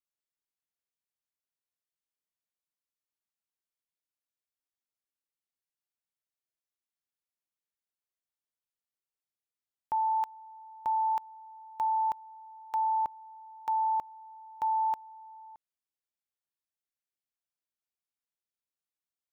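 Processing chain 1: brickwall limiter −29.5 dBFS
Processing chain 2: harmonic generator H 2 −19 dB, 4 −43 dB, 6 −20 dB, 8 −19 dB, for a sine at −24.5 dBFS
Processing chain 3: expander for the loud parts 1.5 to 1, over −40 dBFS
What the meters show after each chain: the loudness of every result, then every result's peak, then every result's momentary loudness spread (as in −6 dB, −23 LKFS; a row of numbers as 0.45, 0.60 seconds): −36.0, −31.0, −31.5 LKFS; −29.5, −22.5, −24.5 dBFS; 16, 21, 9 LU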